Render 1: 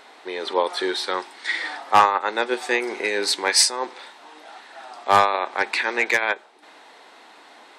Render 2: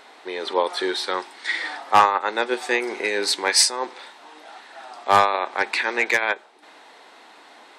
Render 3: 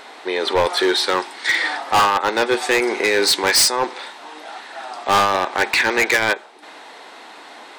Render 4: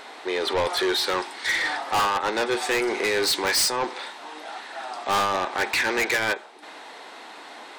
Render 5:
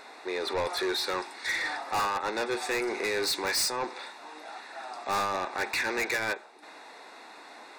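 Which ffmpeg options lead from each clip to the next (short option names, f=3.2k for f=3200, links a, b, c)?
-af anull
-af "asoftclip=type=hard:threshold=-19.5dB,volume=8dB"
-af "asoftclip=type=tanh:threshold=-17dB,volume=-2dB"
-af "asuperstop=centerf=3100:order=4:qfactor=5.7,volume=-6dB"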